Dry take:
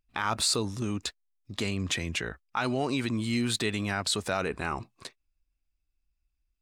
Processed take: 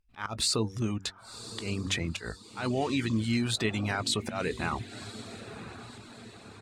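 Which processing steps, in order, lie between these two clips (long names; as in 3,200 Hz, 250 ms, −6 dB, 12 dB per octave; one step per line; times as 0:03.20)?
volume swells 132 ms
high-shelf EQ 11,000 Hz −8 dB
double-tracking delay 18 ms −13.5 dB
feedback delay with all-pass diffusion 1,058 ms, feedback 50%, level −12 dB
reverb reduction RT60 0.56 s
low-shelf EQ 210 Hz +3.5 dB
hum removal 95.52 Hz, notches 5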